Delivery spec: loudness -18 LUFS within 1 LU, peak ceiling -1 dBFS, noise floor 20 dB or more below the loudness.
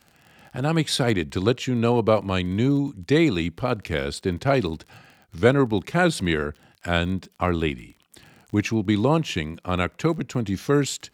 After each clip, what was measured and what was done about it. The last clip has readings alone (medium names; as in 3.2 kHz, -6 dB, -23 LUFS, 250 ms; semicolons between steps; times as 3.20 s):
tick rate 31 per s; loudness -23.5 LUFS; peak level -4.5 dBFS; loudness target -18.0 LUFS
-> de-click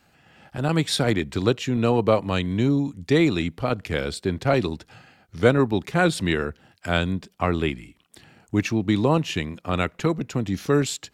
tick rate 0 per s; loudness -23.5 LUFS; peak level -4.5 dBFS; loudness target -18.0 LUFS
-> trim +5.5 dB; peak limiter -1 dBFS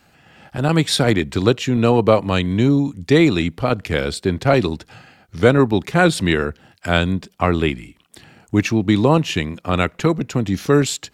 loudness -18.0 LUFS; peak level -1.0 dBFS; noise floor -58 dBFS